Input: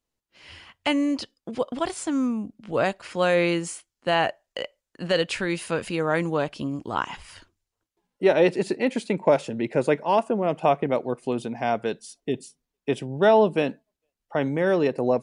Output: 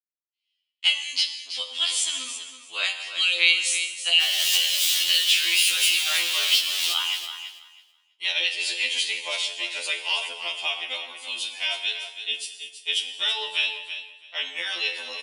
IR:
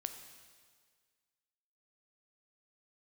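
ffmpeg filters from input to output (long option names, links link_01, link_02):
-filter_complex "[0:a]asettb=1/sr,asplit=3[link_01][link_02][link_03];[link_01]atrim=end=4.214[link_04];[link_02]atrim=start=4.21:end=6.93,asetpts=PTS-STARTPTS,afade=type=in:duration=0.004:curve=qsin,afade=type=out:start_time=2.716:duration=0.004:curve=qsin,aeval=exprs='val(0)+0.5*0.0668*sgn(val(0))':channel_layout=same[link_05];[link_03]atrim=start=6.926[link_06];[link_04][link_05]acrossfade=duration=0.004:curve1=hsin:curve2=qsin[link_07];[link_07][link_06]acrossfade=duration=0.004:curve1=qsin:curve2=hsin,agate=range=-48dB:threshold=-37dB:ratio=16:detection=peak,highshelf=frequency=2200:width_type=q:width=3:gain=13,acompressor=threshold=-17dB:ratio=4,highpass=frequency=1500:width_type=q:width=1.6,asplit=2[link_08][link_09];[link_09]adelay=37,volume=-13.5dB[link_10];[link_08][link_10]amix=inputs=2:normalize=0,aecho=1:1:327|654|981:0.316|0.0569|0.0102[link_11];[1:a]atrim=start_sample=2205,afade=type=out:start_time=0.29:duration=0.01,atrim=end_sample=13230[link_12];[link_11][link_12]afir=irnorm=-1:irlink=0,afftfilt=real='re*2*eq(mod(b,4),0)':imag='im*2*eq(mod(b,4),0)':win_size=2048:overlap=0.75,volume=2dB"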